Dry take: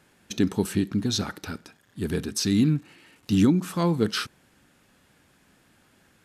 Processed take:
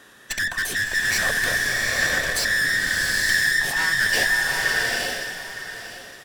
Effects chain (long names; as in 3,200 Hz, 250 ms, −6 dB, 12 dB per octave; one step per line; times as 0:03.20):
frequency inversion band by band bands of 2,000 Hz
in parallel at +2 dB: downward compressor, threshold −32 dBFS, peak gain reduction 15.5 dB
on the sum: tube saturation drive 29 dB, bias 0.65
single-tap delay 913 ms −12.5 dB
slow-attack reverb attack 860 ms, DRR −2 dB
level +7.5 dB